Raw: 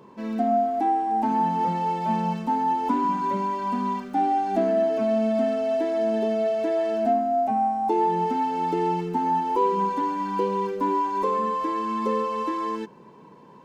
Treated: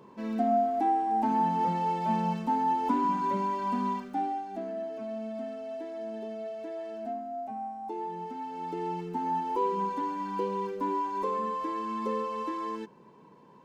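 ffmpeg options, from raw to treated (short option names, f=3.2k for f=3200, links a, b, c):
-af "volume=4dB,afade=t=out:st=3.86:d=0.62:silence=0.298538,afade=t=in:st=8.35:d=1.03:silence=0.421697"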